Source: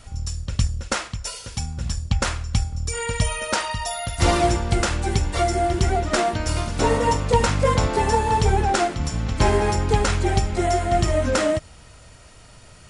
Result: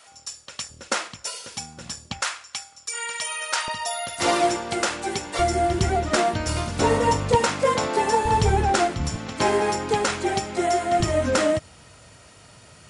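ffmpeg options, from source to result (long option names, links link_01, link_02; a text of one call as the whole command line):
ffmpeg -i in.wav -af "asetnsamples=nb_out_samples=441:pad=0,asendcmd='0.7 highpass f 280;2.21 highpass f 990;3.68 highpass f 300;5.39 highpass f 79;7.35 highpass f 250;8.25 highpass f 60;9.16 highpass f 230;11 highpass f 97',highpass=640" out.wav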